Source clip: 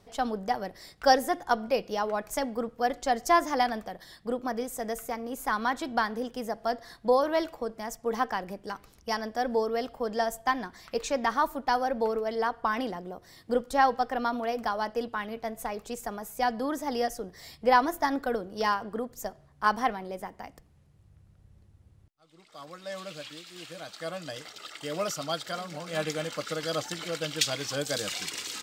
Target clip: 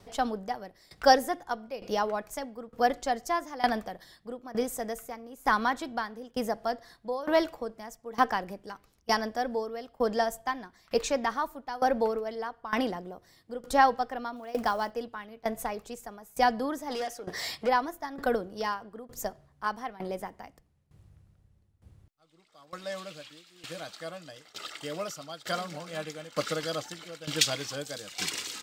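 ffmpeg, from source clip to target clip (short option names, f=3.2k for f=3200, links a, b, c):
-filter_complex "[0:a]asettb=1/sr,asplit=3[a][b][c];[a]atrim=end=14.364[d];[b]atrim=start=14.36:end=14.91,asetpts=PTS-STARTPTS,afade=t=in:d=0.004:c=qsin,afade=t=out:st=0.546:d=0.004:c=qsin,acrusher=bits=7:mode=log:mix=0:aa=0.000001[e];[c]atrim=start=14.906[f];[d][e]acrossfade=d=0.004:c1=hsin:c2=qsin[g];[g][f]acrossfade=d=0.004:c1=qsin:c2=hsin,asplit=3[h][i][j];[h]afade=t=out:st=16.89:d=0.02[k];[i]asplit=2[l][m];[m]highpass=f=720:p=1,volume=19dB,asoftclip=type=tanh:threshold=-18dB[n];[l][n]amix=inputs=2:normalize=0,lowpass=f=5.4k:p=1,volume=-6dB,afade=t=in:st=16.89:d=0.02,afade=t=out:st=17.67:d=0.02[o];[j]afade=t=in:st=17.67:d=0.02[p];[k][o][p]amix=inputs=3:normalize=0,aeval=exprs='val(0)*pow(10,-18*if(lt(mod(1.1*n/s,1),2*abs(1.1)/1000),1-mod(1.1*n/s,1)/(2*abs(1.1)/1000),(mod(1.1*n/s,1)-2*abs(1.1)/1000)/(1-2*abs(1.1)/1000))/20)':c=same,volume=5dB"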